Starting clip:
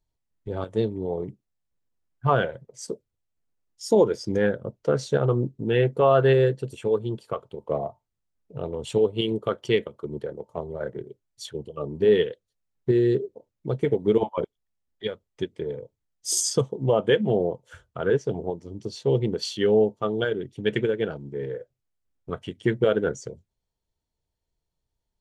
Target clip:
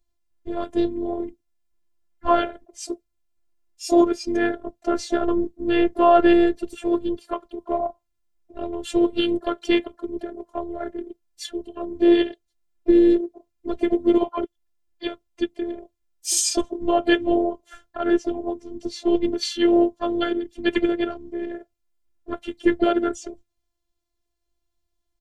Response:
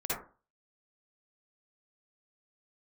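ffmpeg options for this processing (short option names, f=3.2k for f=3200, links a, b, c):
-filter_complex "[0:a]asplit=4[a][b][c][d];[b]asetrate=22050,aresample=44100,atempo=2,volume=-16dB[e];[c]asetrate=37084,aresample=44100,atempo=1.18921,volume=-16dB[f];[d]asetrate=58866,aresample=44100,atempo=0.749154,volume=-17dB[g];[a][e][f][g]amix=inputs=4:normalize=0,afftfilt=real='hypot(re,im)*cos(PI*b)':imag='0':win_size=512:overlap=0.75,volume=6.5dB"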